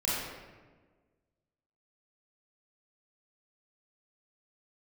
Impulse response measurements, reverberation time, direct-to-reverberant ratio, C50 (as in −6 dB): 1.4 s, −8.0 dB, −2.5 dB